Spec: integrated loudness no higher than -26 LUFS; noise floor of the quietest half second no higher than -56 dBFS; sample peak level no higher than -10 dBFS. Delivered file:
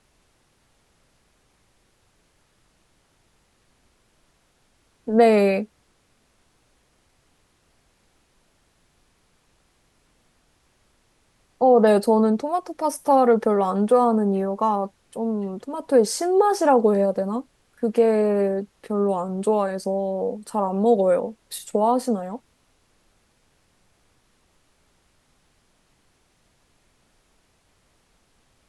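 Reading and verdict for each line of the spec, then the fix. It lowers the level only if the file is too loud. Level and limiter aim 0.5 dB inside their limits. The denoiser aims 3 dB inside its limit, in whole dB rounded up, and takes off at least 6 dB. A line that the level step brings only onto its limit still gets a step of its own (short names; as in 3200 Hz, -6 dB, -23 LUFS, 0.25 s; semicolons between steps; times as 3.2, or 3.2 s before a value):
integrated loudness -21.0 LUFS: fail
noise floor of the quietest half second -64 dBFS: OK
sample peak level -5.5 dBFS: fail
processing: gain -5.5 dB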